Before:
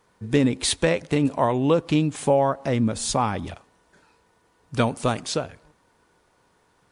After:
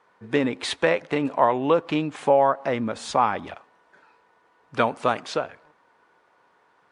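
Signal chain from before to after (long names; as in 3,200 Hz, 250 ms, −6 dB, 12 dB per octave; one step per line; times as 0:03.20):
resonant band-pass 1,600 Hz, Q 0.6
high-shelf EQ 2,200 Hz −9 dB
level +7 dB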